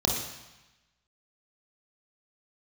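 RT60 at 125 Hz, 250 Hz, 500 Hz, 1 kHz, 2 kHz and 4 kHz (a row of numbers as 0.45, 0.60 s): 1.1, 1.0, 0.90, 1.1, 1.2, 1.1 s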